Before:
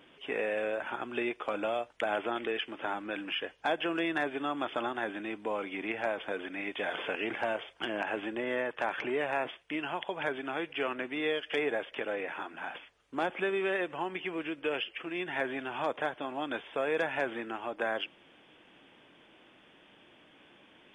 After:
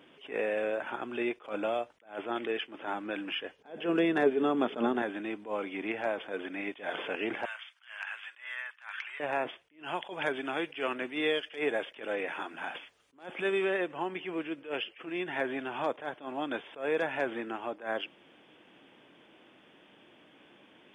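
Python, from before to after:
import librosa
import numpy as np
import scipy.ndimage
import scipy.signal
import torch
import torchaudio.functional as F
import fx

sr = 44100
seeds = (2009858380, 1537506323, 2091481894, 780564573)

y = fx.small_body(x, sr, hz=(220.0, 420.0), ring_ms=45, db=14, at=(3.58, 5.02))
y = fx.highpass(y, sr, hz=1300.0, slope=24, at=(7.45, 9.2))
y = fx.high_shelf(y, sr, hz=2700.0, db=8.0, at=(9.84, 13.65))
y = fx.highpass(y, sr, hz=220.0, slope=6)
y = fx.low_shelf(y, sr, hz=470.0, db=7.0)
y = fx.attack_slew(y, sr, db_per_s=180.0)
y = F.gain(torch.from_numpy(y), -1.0).numpy()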